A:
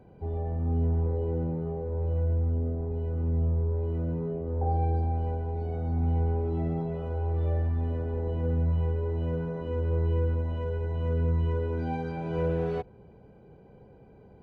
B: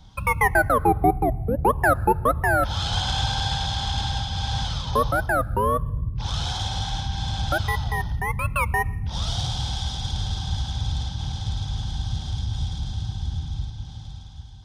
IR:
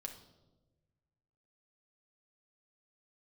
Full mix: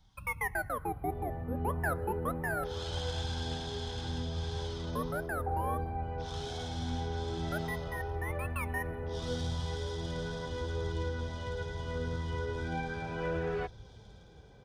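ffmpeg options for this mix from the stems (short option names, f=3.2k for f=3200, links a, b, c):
-filter_complex "[0:a]highpass=82,equalizer=f=1.7k:t=o:w=1.8:g=13,adelay=850,volume=-3dB[a];[1:a]equalizer=f=1.9k:w=2.1:g=4.5,volume=-12dB[b];[a][b]amix=inputs=2:normalize=0,highshelf=f=7.7k:g=7.5,flanger=delay=2.2:depth=6.6:regen=75:speed=0.37:shape=triangular"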